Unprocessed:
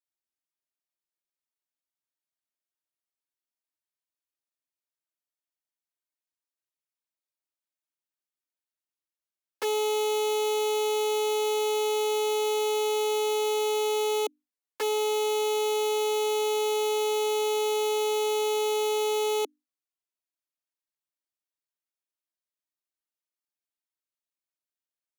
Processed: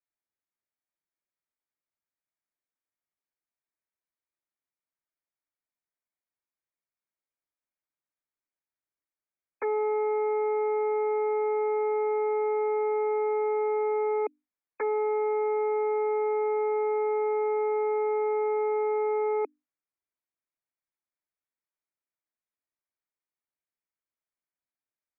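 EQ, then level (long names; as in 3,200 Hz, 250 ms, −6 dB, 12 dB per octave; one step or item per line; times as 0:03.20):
linear-phase brick-wall low-pass 2,500 Hz
0.0 dB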